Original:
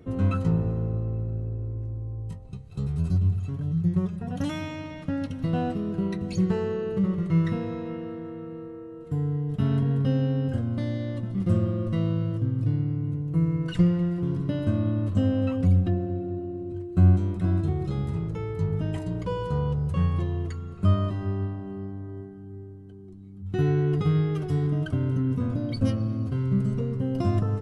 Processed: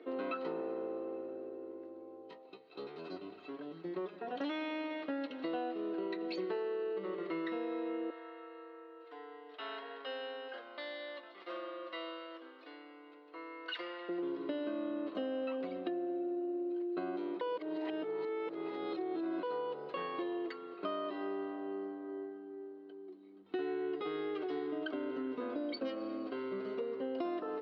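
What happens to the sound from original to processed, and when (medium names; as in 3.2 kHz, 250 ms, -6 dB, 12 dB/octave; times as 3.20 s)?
8.10–14.09 s: high-pass 900 Hz
17.41–19.43 s: reverse
whole clip: Chebyshev band-pass 310–4300 Hz, order 4; compression, threshold -36 dBFS; trim +1.5 dB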